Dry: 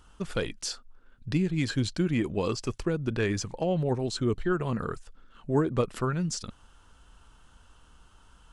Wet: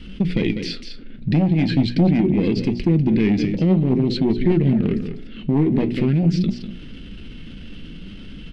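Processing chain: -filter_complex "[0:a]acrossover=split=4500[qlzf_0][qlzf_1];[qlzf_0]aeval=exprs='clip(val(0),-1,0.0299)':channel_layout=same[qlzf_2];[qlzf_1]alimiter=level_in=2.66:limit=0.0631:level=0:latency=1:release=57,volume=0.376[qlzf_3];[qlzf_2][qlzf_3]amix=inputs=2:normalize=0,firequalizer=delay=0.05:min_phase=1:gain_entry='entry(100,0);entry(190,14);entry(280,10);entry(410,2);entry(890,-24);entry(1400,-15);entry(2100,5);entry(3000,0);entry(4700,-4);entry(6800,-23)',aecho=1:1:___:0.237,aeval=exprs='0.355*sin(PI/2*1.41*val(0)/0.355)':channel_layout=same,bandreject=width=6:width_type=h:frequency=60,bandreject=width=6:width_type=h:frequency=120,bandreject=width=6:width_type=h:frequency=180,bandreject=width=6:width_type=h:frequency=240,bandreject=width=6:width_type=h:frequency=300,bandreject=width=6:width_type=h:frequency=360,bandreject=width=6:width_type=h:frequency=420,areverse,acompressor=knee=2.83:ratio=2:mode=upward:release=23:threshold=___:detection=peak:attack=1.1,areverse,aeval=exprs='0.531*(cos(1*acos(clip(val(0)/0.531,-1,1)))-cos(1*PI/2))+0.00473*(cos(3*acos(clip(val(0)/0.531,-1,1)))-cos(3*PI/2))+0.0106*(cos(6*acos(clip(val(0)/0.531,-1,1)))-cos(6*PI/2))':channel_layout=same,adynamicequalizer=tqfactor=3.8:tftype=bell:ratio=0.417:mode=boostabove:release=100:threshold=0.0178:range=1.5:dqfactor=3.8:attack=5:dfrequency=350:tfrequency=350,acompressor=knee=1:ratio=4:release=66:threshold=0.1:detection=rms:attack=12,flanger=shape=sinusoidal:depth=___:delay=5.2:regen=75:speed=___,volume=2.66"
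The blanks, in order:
197, 0.0447, 8.7, 0.46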